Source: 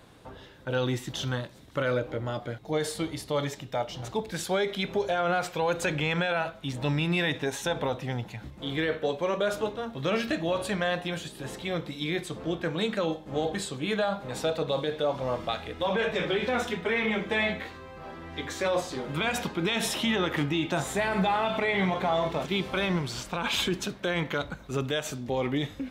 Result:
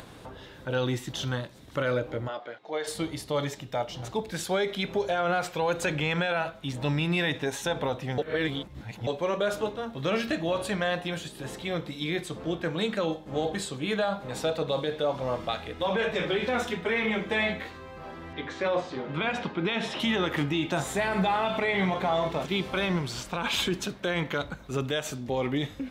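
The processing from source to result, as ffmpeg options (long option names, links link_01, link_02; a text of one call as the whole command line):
ffmpeg -i in.wav -filter_complex "[0:a]asplit=3[link_01][link_02][link_03];[link_01]afade=type=out:start_time=2.27:duration=0.02[link_04];[link_02]highpass=490,lowpass=3700,afade=type=in:start_time=2.27:duration=0.02,afade=type=out:start_time=2.86:duration=0.02[link_05];[link_03]afade=type=in:start_time=2.86:duration=0.02[link_06];[link_04][link_05][link_06]amix=inputs=3:normalize=0,asettb=1/sr,asplit=3[link_07][link_08][link_09];[link_07]atrim=end=18.334[link_10];[link_08]atrim=start=18.33:end=20,asetpts=PTS-STARTPTS,afade=type=in:duration=0.004:curve=qsin,afade=type=out:start_time=1.666:duration=0.004:curve=qsin,highpass=100,lowpass=3400[link_11];[link_09]atrim=start=19.996[link_12];[link_10][link_11]acrossfade=duration=0.004:curve1=hsin:curve2=qsin[link_13];[link_13][link_12]acrossfade=duration=0.004:curve1=qsin:curve2=hsin,asplit=3[link_14][link_15][link_16];[link_14]atrim=end=8.182[link_17];[link_15]atrim=start=8.178:end=9.072,asetpts=PTS-STARTPTS,areverse[link_18];[link_16]atrim=start=9.068[link_19];[link_17][link_18]acrossfade=duration=0.004:curve1=hsin:curve2=hsin[link_20];[link_20][link_19]acrossfade=duration=0.004:curve1=hsin:curve2=hsin,acompressor=mode=upward:threshold=-39dB:ratio=2.5" out.wav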